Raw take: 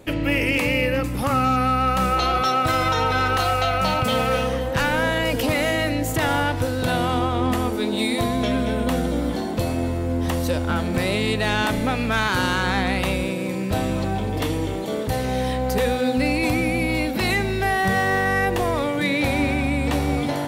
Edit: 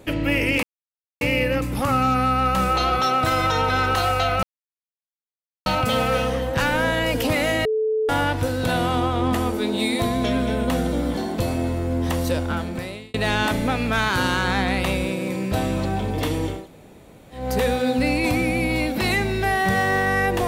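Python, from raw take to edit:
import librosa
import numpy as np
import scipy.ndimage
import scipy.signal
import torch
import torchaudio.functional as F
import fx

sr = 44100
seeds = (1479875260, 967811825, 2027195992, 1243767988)

y = fx.edit(x, sr, fx.insert_silence(at_s=0.63, length_s=0.58),
    fx.insert_silence(at_s=3.85, length_s=1.23),
    fx.bleep(start_s=5.84, length_s=0.44, hz=436.0, db=-18.5),
    fx.fade_out_span(start_s=10.54, length_s=0.79),
    fx.room_tone_fill(start_s=14.77, length_s=0.84, crossfade_s=0.24), tone=tone)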